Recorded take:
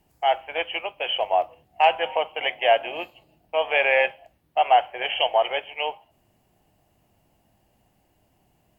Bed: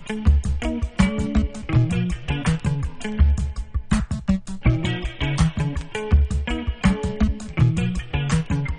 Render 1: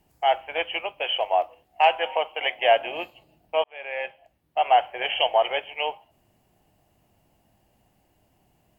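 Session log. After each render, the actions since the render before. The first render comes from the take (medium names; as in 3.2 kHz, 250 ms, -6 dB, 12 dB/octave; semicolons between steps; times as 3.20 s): 1.05–2.59 s: peaking EQ 130 Hz -11.5 dB 1.6 oct; 3.64–4.88 s: fade in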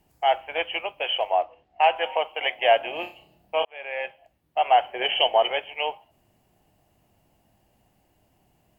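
1.31–1.96 s: distance through air 150 m; 3.00–3.65 s: flutter echo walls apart 5.3 m, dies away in 0.31 s; 4.84–5.51 s: small resonant body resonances 250/390/3000 Hz, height 8 dB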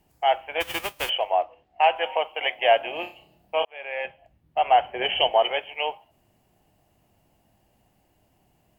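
0.60–1.08 s: formants flattened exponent 0.3; 4.05–5.31 s: tone controls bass +10 dB, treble -5 dB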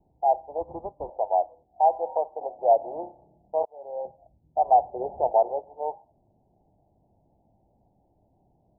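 steep low-pass 910 Hz 72 dB/octave; dynamic bell 230 Hz, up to -3 dB, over -38 dBFS, Q 1.2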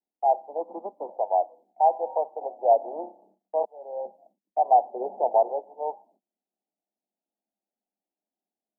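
gate -58 dBFS, range -27 dB; steep high-pass 190 Hz 96 dB/octave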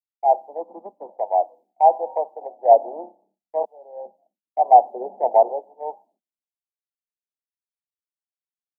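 in parallel at -1 dB: compression, threshold -30 dBFS, peak gain reduction 15.5 dB; on the sum: three bands expanded up and down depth 100%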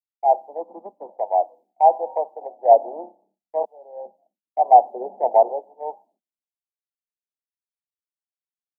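no audible change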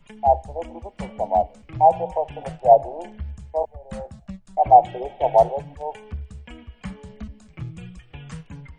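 add bed -16 dB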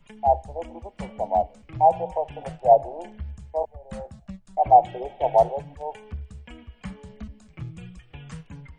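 trim -2.5 dB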